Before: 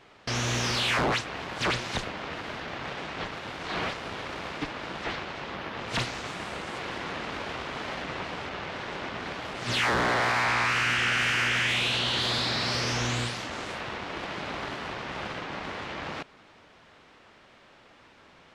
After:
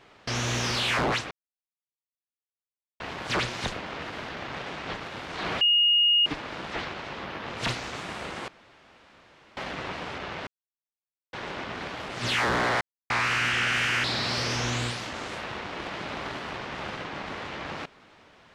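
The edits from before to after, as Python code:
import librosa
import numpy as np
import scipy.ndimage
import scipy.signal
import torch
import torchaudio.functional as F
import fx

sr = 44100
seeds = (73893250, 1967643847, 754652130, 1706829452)

y = fx.edit(x, sr, fx.insert_silence(at_s=1.31, length_s=1.69),
    fx.bleep(start_s=3.92, length_s=0.65, hz=2860.0, db=-17.5),
    fx.room_tone_fill(start_s=6.79, length_s=1.09),
    fx.insert_silence(at_s=8.78, length_s=0.86),
    fx.silence(start_s=10.26, length_s=0.29),
    fx.cut(start_s=11.49, length_s=0.92), tone=tone)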